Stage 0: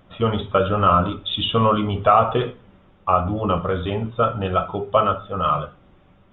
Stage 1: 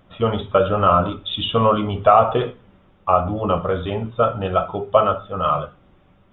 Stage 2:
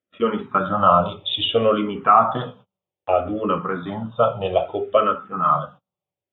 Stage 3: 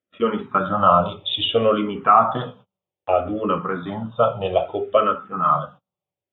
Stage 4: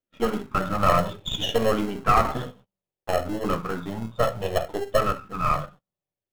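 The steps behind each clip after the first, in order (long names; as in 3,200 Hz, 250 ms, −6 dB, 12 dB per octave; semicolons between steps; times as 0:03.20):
dynamic equaliser 640 Hz, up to +5 dB, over −29 dBFS, Q 1.3; level −1 dB
noise gate −40 dBFS, range −32 dB; high-pass filter 150 Hz 12 dB per octave; frequency shifter mixed with the dry sound −0.62 Hz; level +2.5 dB
no processing that can be heard
gain on one half-wave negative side −7 dB; in parallel at −6.5 dB: decimation without filtering 37×; on the sum: level −3.5 dB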